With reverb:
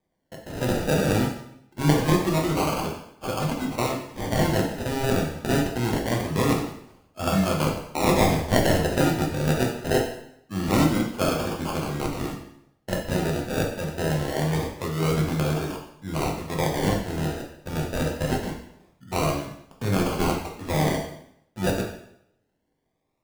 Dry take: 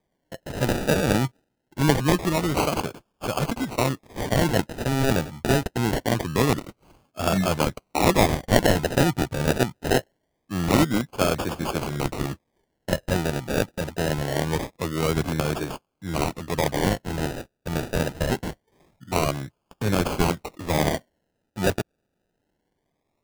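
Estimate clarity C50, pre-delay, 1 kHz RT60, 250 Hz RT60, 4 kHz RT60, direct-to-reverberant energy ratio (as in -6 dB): 5.0 dB, 5 ms, 0.75 s, 0.80 s, 0.70 s, -0.5 dB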